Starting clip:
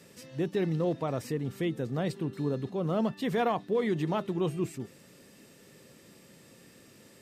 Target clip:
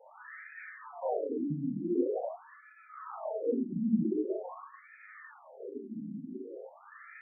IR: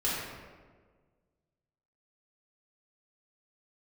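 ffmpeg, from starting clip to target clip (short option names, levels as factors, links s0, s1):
-filter_complex "[0:a]acontrast=88,equalizer=f=78:t=o:w=2.9:g=7,acompressor=threshold=0.0251:ratio=6,asettb=1/sr,asplit=3[s0][s1][s2];[s0]atrim=end=1.424[s3];[s1]atrim=start=1.42:end=3.44,asetpts=PTS-STARTPTS,afade=t=in:d=0.004:c=qsin,afade=t=out:st=2.016:d=0.004:c=qsin,acrossover=split=1300[s4][s5];[s4]adelay=160[s6];[s6][s5]amix=inputs=2:normalize=0,atrim=end_sample=89082[s7];[s2]atrim=start=3.436[s8];[s3][s7]acrossfade=d=0.004:c1=hsin:c2=qsin[s9];[s9][s8]acrossfade=d=0.004:c1=qsin:c2=hsin[s10];[1:a]atrim=start_sample=2205,afade=t=out:st=0.27:d=0.01,atrim=end_sample=12348[s11];[s10][s11]afir=irnorm=-1:irlink=0,flanger=delay=7.1:depth=2.8:regen=-29:speed=1.9:shape=triangular,afftfilt=real='re*between(b*sr/1024,220*pow(1800/220,0.5+0.5*sin(2*PI*0.45*pts/sr))/1.41,220*pow(1800/220,0.5+0.5*sin(2*PI*0.45*pts/sr))*1.41)':imag='im*between(b*sr/1024,220*pow(1800/220,0.5+0.5*sin(2*PI*0.45*pts/sr))/1.41,220*pow(1800/220,0.5+0.5*sin(2*PI*0.45*pts/sr))*1.41)':win_size=1024:overlap=0.75,volume=1.58"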